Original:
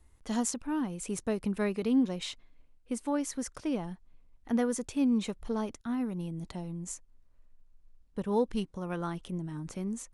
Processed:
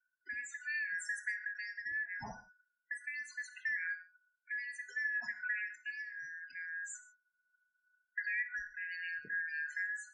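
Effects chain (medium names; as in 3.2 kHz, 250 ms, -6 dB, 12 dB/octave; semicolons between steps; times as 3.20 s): four frequency bands reordered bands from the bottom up 3142; gate -48 dBFS, range -22 dB; 5.90–6.93 s: peaking EQ 990 Hz -10 dB 2 oct; compression 6:1, threshold -33 dBFS, peak gain reduction 11 dB; rotary cabinet horn 0.7 Hz; loudest bins only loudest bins 16; gated-style reverb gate 180 ms falling, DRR 7.5 dB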